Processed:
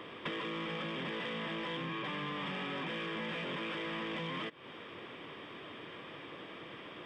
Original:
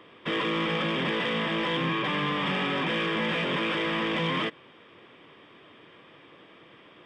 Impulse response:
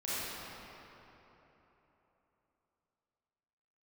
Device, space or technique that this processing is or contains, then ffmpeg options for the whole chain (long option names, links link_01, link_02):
serial compression, peaks first: -af "acompressor=threshold=-38dB:ratio=6,acompressor=threshold=-48dB:ratio=1.5,volume=5dB"